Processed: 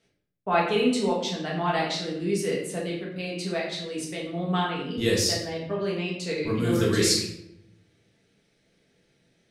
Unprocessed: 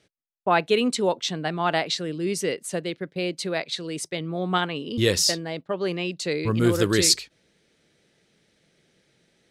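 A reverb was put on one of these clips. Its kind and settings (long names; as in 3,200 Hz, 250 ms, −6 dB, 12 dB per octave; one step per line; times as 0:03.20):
rectangular room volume 200 cubic metres, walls mixed, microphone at 1.6 metres
level −8 dB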